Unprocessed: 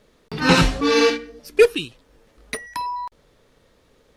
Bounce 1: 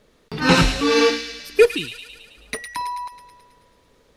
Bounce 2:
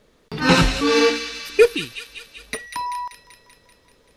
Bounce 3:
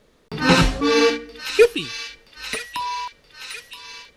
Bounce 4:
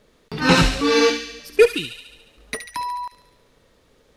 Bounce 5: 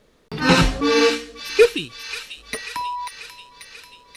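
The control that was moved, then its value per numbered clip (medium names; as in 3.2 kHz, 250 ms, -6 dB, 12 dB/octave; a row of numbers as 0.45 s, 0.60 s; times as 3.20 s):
feedback echo behind a high-pass, time: 108 ms, 193 ms, 975 ms, 71 ms, 539 ms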